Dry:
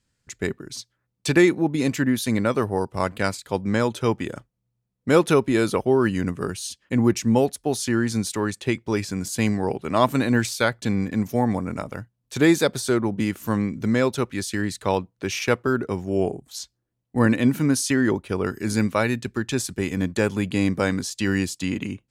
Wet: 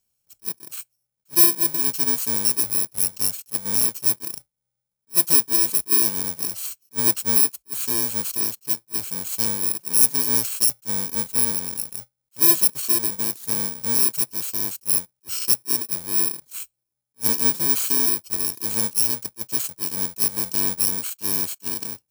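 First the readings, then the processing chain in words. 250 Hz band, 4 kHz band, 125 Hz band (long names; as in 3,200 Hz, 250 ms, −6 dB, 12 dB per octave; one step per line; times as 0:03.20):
−13.5 dB, +4.0 dB, −13.5 dB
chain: samples in bit-reversed order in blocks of 64 samples
bass and treble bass −5 dB, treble +11 dB
level that may rise only so fast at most 480 dB per second
level −7.5 dB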